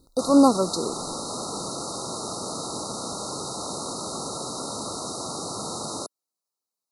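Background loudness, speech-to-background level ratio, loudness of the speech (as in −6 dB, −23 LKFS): −31.5 LKFS, 11.0 dB, −20.5 LKFS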